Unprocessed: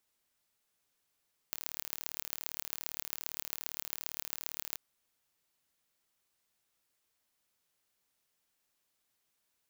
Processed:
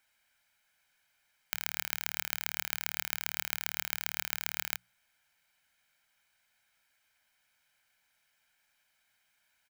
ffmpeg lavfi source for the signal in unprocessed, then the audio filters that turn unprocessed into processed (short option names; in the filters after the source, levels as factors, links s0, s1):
-f lavfi -i "aevalsrc='0.422*eq(mod(n,1176),0)*(0.5+0.5*eq(mod(n,5880),0))':d=3.24:s=44100"
-af "equalizer=f=1900:t=o:w=1.5:g=13,bandreject=f=60:t=h:w=6,bandreject=f=120:t=h:w=6,bandreject=f=180:t=h:w=6,aecho=1:1:1.3:0.64"